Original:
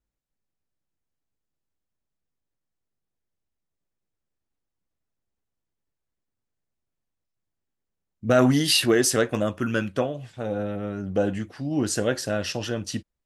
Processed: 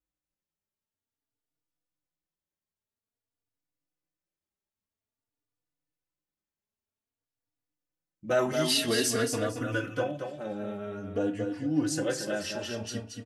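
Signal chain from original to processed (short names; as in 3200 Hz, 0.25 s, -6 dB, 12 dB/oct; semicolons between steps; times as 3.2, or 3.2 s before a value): low shelf 60 Hz -11 dB; feedback echo 0.227 s, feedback 24%, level -6 dB; FDN reverb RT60 0.31 s, low-frequency decay 1×, high-frequency decay 0.75×, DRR 7.5 dB; endless flanger 3.5 ms +0.5 Hz; gain -3.5 dB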